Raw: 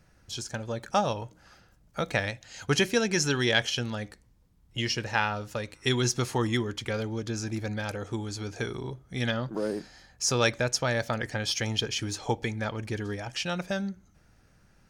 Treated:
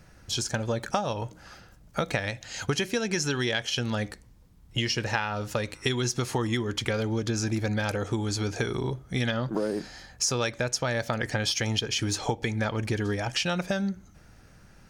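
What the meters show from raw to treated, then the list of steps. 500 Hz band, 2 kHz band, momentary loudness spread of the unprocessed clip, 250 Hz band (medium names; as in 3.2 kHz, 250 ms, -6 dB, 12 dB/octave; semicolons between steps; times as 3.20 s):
+0.5 dB, -0.5 dB, 12 LU, +1.5 dB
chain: compression 12:1, threshold -31 dBFS, peak gain reduction 14 dB; trim +7.5 dB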